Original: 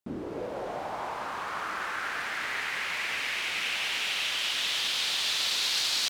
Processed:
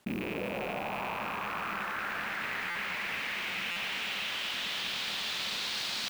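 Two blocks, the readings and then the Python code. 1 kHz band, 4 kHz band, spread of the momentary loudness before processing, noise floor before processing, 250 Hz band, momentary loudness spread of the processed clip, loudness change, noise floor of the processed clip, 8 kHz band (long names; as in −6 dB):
−2.0 dB, −6.0 dB, 10 LU, −37 dBFS, +2.5 dB, 3 LU, −4.0 dB, −36 dBFS, −10.0 dB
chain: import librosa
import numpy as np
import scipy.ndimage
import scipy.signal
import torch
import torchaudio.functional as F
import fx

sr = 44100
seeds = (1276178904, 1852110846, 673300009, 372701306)

y = fx.rattle_buzz(x, sr, strikes_db=-52.0, level_db=-23.0)
y = scipy.signal.sosfilt(scipy.signal.butter(2, 9300.0, 'lowpass', fs=sr, output='sos'), y)
y = fx.peak_eq(y, sr, hz=200.0, db=11.5, octaves=0.39)
y = fx.mod_noise(y, sr, seeds[0], snr_db=19)
y = fx.peak_eq(y, sr, hz=6800.0, db=-8.0, octaves=2.1)
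y = fx.buffer_glitch(y, sr, at_s=(2.7, 3.71), block=256, repeats=8)
y = fx.env_flatten(y, sr, amount_pct=50)
y = y * 10.0 ** (-3.5 / 20.0)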